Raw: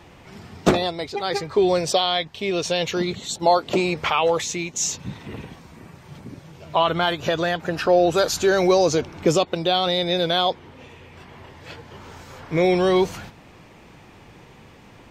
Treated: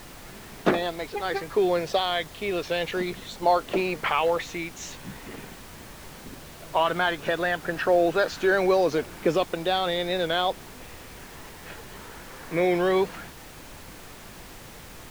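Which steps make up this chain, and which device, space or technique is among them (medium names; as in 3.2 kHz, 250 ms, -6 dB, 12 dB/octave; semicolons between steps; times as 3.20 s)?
horn gramophone (band-pass 190–3300 Hz; peaking EQ 1.7 kHz +6 dB 0.52 oct; wow and flutter; pink noise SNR 17 dB); trim -4 dB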